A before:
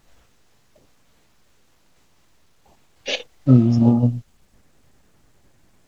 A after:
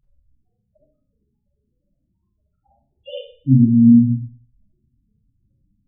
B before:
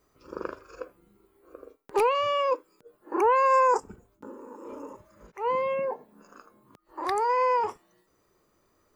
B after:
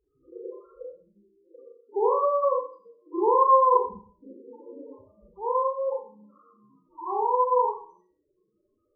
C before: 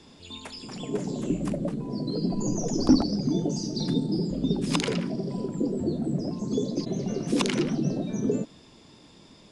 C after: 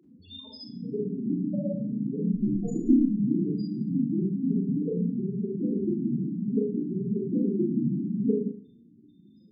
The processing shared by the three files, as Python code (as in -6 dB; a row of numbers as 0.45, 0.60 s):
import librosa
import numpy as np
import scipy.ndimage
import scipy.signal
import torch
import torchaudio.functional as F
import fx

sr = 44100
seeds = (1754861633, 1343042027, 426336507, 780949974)

y = fx.cheby_harmonics(x, sr, harmonics=(6,), levels_db=(-27,), full_scale_db=-1.5)
y = fx.spec_topn(y, sr, count=4)
y = fx.rev_schroeder(y, sr, rt60_s=0.46, comb_ms=30, drr_db=-2.5)
y = y * librosa.db_to_amplitude(-2.0)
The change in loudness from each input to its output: +4.0, +2.0, 0.0 LU